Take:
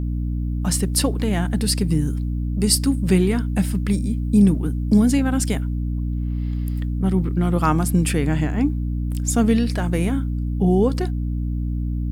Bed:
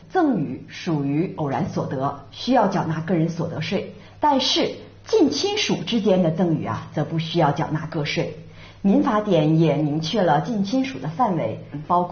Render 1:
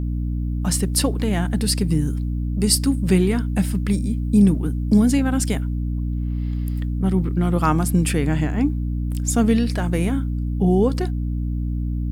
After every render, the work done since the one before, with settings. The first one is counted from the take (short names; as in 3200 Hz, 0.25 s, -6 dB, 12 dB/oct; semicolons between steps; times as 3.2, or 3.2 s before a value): nothing audible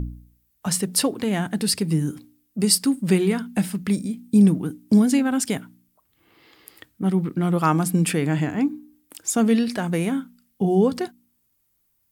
de-hum 60 Hz, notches 5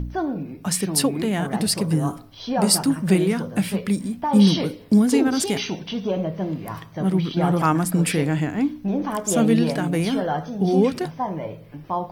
add bed -6.5 dB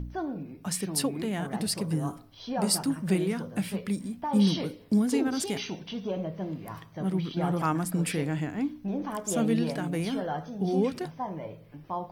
gain -8 dB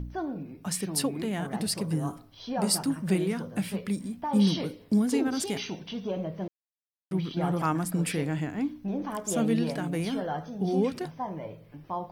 6.48–7.11 mute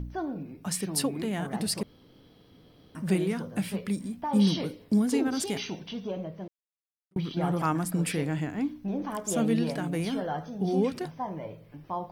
1.83–2.95 room tone; 5.82–7.16 fade out